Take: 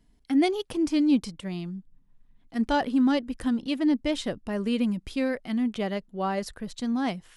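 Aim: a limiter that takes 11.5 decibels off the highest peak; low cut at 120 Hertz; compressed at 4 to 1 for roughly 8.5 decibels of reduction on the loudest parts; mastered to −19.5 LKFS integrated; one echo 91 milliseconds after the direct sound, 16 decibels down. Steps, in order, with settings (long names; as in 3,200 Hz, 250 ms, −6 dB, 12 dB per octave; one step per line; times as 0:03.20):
high-pass filter 120 Hz
downward compressor 4 to 1, threshold −29 dBFS
brickwall limiter −32 dBFS
single-tap delay 91 ms −16 dB
level +20 dB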